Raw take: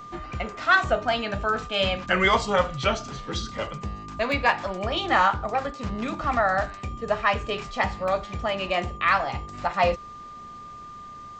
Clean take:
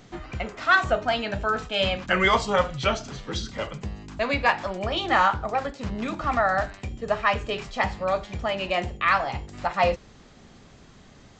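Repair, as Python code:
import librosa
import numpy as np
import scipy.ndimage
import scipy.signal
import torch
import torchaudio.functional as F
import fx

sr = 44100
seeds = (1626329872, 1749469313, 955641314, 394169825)

y = fx.notch(x, sr, hz=1200.0, q=30.0)
y = fx.fix_interpolate(y, sr, at_s=(4.32, 8.08), length_ms=1.3)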